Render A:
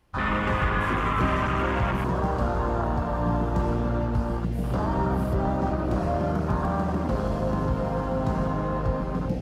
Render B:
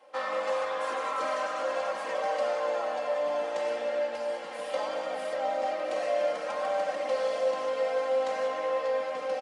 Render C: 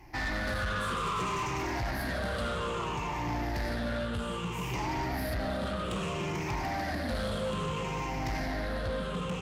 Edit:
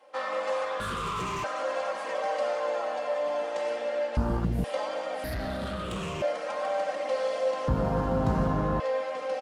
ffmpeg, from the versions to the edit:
-filter_complex "[2:a]asplit=2[a][b];[0:a]asplit=2[c][d];[1:a]asplit=5[e][f][g][h][i];[e]atrim=end=0.802[j];[a]atrim=start=0.798:end=1.442[k];[f]atrim=start=1.438:end=4.172[l];[c]atrim=start=4.168:end=4.642[m];[g]atrim=start=4.638:end=5.242[n];[b]atrim=start=5.238:end=6.222[o];[h]atrim=start=6.218:end=7.682[p];[d]atrim=start=7.678:end=8.802[q];[i]atrim=start=8.798[r];[j][k]acrossfade=d=0.004:c1=hsin:c2=hsin[s];[s][l]acrossfade=d=0.004:c1=hsin:c2=hsin[t];[t][m]acrossfade=d=0.004:c1=hsin:c2=hsin[u];[u][n]acrossfade=d=0.004:c1=hsin:c2=hsin[v];[v][o]acrossfade=d=0.004:c1=hsin:c2=hsin[w];[w][p]acrossfade=d=0.004:c1=hsin:c2=hsin[x];[x][q]acrossfade=d=0.004:c1=hsin:c2=hsin[y];[y][r]acrossfade=d=0.004:c1=hsin:c2=hsin"

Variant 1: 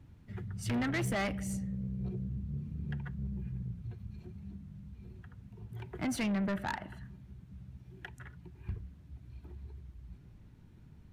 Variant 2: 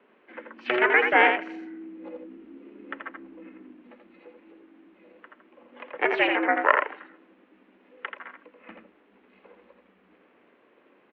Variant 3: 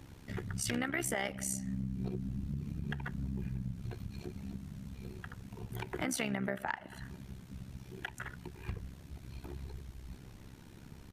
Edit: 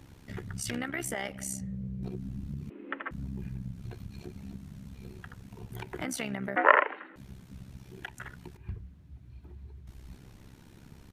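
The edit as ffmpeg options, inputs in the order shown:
-filter_complex "[0:a]asplit=2[a][b];[1:a]asplit=2[c][d];[2:a]asplit=5[e][f][g][h][i];[e]atrim=end=1.612[j];[a]atrim=start=1.608:end=2.032[k];[f]atrim=start=2.028:end=2.702[l];[c]atrim=start=2.698:end=3.112[m];[g]atrim=start=3.108:end=6.562[n];[d]atrim=start=6.558:end=7.162[o];[h]atrim=start=7.158:end=8.572[p];[b]atrim=start=8.568:end=9.872[q];[i]atrim=start=9.868[r];[j][k]acrossfade=d=0.004:c1=hsin:c2=hsin[s];[s][l]acrossfade=d=0.004:c1=hsin:c2=hsin[t];[t][m]acrossfade=d=0.004:c1=hsin:c2=hsin[u];[u][n]acrossfade=d=0.004:c1=hsin:c2=hsin[v];[v][o]acrossfade=d=0.004:c1=hsin:c2=hsin[w];[w][p]acrossfade=d=0.004:c1=hsin:c2=hsin[x];[x][q]acrossfade=d=0.004:c1=hsin:c2=hsin[y];[y][r]acrossfade=d=0.004:c1=hsin:c2=hsin"

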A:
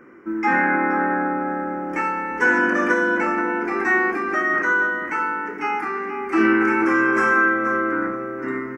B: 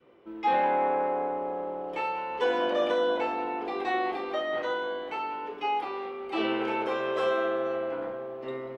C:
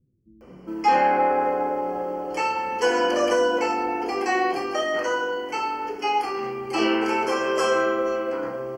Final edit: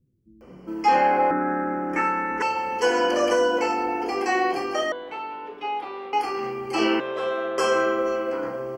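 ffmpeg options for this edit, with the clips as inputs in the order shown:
-filter_complex "[1:a]asplit=2[a][b];[2:a]asplit=4[c][d][e][f];[c]atrim=end=1.312[g];[0:a]atrim=start=1.308:end=2.422[h];[d]atrim=start=2.418:end=4.922[i];[a]atrim=start=4.918:end=6.132[j];[e]atrim=start=6.128:end=7.002[k];[b]atrim=start=6.998:end=7.582[l];[f]atrim=start=7.578[m];[g][h]acrossfade=d=0.004:c1=hsin:c2=hsin[n];[n][i]acrossfade=d=0.004:c1=hsin:c2=hsin[o];[o][j]acrossfade=d=0.004:c1=hsin:c2=hsin[p];[p][k]acrossfade=d=0.004:c1=hsin:c2=hsin[q];[q][l]acrossfade=d=0.004:c1=hsin:c2=hsin[r];[r][m]acrossfade=d=0.004:c1=hsin:c2=hsin"

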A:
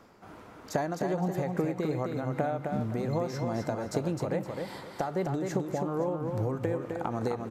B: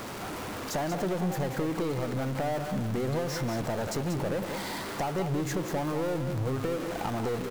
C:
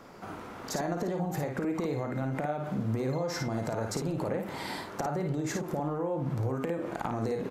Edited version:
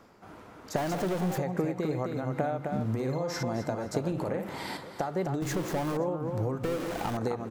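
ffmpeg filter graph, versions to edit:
-filter_complex "[1:a]asplit=3[a][b][c];[2:a]asplit=2[d][e];[0:a]asplit=6[f][g][h][i][j][k];[f]atrim=end=0.762[l];[a]atrim=start=0.758:end=1.382[m];[g]atrim=start=1.378:end=2.852[n];[d]atrim=start=2.848:end=3.432[o];[h]atrim=start=3.428:end=4.122[p];[e]atrim=start=4.118:end=4.772[q];[i]atrim=start=4.768:end=5.422[r];[b]atrim=start=5.418:end=5.972[s];[j]atrim=start=5.968:end=6.642[t];[c]atrim=start=6.638:end=7.172[u];[k]atrim=start=7.168[v];[l][m]acrossfade=d=0.004:c1=hsin:c2=hsin[w];[w][n]acrossfade=d=0.004:c1=hsin:c2=hsin[x];[x][o]acrossfade=d=0.004:c1=hsin:c2=hsin[y];[y][p]acrossfade=d=0.004:c1=hsin:c2=hsin[z];[z][q]acrossfade=d=0.004:c1=hsin:c2=hsin[aa];[aa][r]acrossfade=d=0.004:c1=hsin:c2=hsin[ab];[ab][s]acrossfade=d=0.004:c1=hsin:c2=hsin[ac];[ac][t]acrossfade=d=0.004:c1=hsin:c2=hsin[ad];[ad][u]acrossfade=d=0.004:c1=hsin:c2=hsin[ae];[ae][v]acrossfade=d=0.004:c1=hsin:c2=hsin"

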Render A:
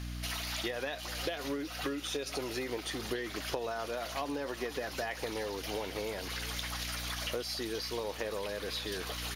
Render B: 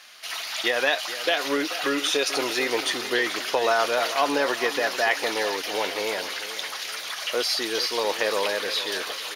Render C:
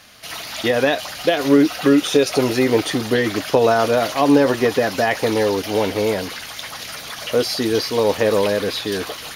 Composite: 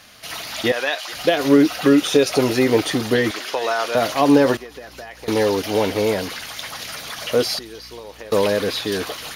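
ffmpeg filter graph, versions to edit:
-filter_complex "[1:a]asplit=2[a][b];[0:a]asplit=2[c][d];[2:a]asplit=5[e][f][g][h][i];[e]atrim=end=0.722[j];[a]atrim=start=0.718:end=1.132[k];[f]atrim=start=1.128:end=3.312[l];[b]atrim=start=3.308:end=3.952[m];[g]atrim=start=3.948:end=4.572[n];[c]atrim=start=4.568:end=5.282[o];[h]atrim=start=5.278:end=7.592[p];[d]atrim=start=7.588:end=8.322[q];[i]atrim=start=8.318[r];[j][k]acrossfade=d=0.004:c1=hsin:c2=hsin[s];[s][l]acrossfade=d=0.004:c1=hsin:c2=hsin[t];[t][m]acrossfade=d=0.004:c1=hsin:c2=hsin[u];[u][n]acrossfade=d=0.004:c1=hsin:c2=hsin[v];[v][o]acrossfade=d=0.004:c1=hsin:c2=hsin[w];[w][p]acrossfade=d=0.004:c1=hsin:c2=hsin[x];[x][q]acrossfade=d=0.004:c1=hsin:c2=hsin[y];[y][r]acrossfade=d=0.004:c1=hsin:c2=hsin"

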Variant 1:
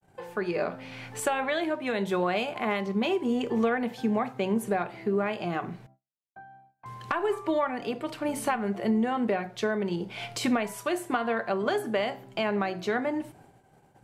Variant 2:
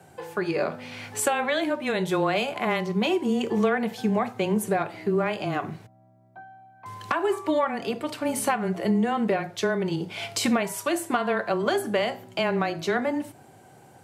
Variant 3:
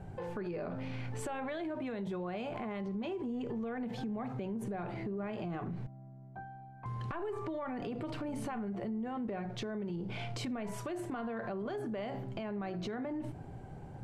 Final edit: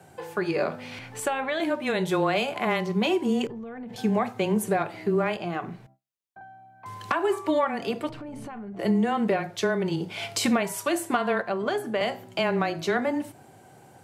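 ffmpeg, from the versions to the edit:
-filter_complex "[0:a]asplit=3[a][b][c];[2:a]asplit=2[d][e];[1:a]asplit=6[f][g][h][i][j][k];[f]atrim=end=0.992[l];[a]atrim=start=0.988:end=1.602[m];[g]atrim=start=1.598:end=3.472[n];[d]atrim=start=3.468:end=3.962[o];[h]atrim=start=3.958:end=5.372[p];[b]atrim=start=5.368:end=6.412[q];[i]atrim=start=6.408:end=8.092[r];[e]atrim=start=8.088:end=8.792[s];[j]atrim=start=8.788:end=11.422[t];[c]atrim=start=11.418:end=12.012[u];[k]atrim=start=12.008[v];[l][m]acrossfade=d=0.004:c1=hsin:c2=hsin[w];[w][n]acrossfade=d=0.004:c1=hsin:c2=hsin[x];[x][o]acrossfade=d=0.004:c1=hsin:c2=hsin[y];[y][p]acrossfade=d=0.004:c1=hsin:c2=hsin[z];[z][q]acrossfade=d=0.004:c1=hsin:c2=hsin[aa];[aa][r]acrossfade=d=0.004:c1=hsin:c2=hsin[ab];[ab][s]acrossfade=d=0.004:c1=hsin:c2=hsin[ac];[ac][t]acrossfade=d=0.004:c1=hsin:c2=hsin[ad];[ad][u]acrossfade=d=0.004:c1=hsin:c2=hsin[ae];[ae][v]acrossfade=d=0.004:c1=hsin:c2=hsin"

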